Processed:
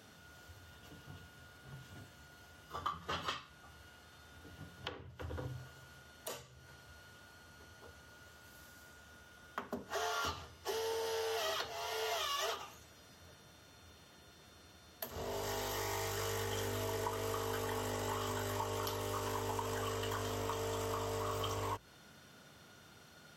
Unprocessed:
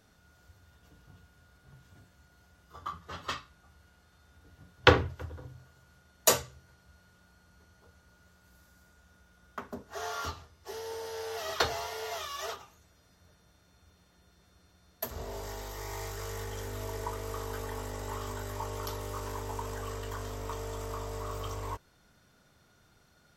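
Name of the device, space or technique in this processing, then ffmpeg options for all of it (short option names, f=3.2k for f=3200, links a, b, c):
broadcast voice chain: -af "highpass=98,bandreject=f=60:t=h:w=6,bandreject=f=120:t=h:w=6,bandreject=f=180:t=h:w=6,deesser=0.4,acompressor=threshold=-42dB:ratio=4,equalizer=f=3k:t=o:w=0.3:g=6,alimiter=level_in=7dB:limit=-24dB:level=0:latency=1:release=471,volume=-7dB,volume=6dB"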